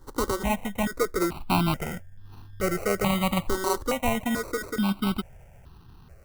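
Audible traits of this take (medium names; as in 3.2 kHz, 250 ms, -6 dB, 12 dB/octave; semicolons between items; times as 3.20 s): aliases and images of a low sample rate 1.7 kHz, jitter 0%; notches that jump at a steady rate 2.3 Hz 670–2200 Hz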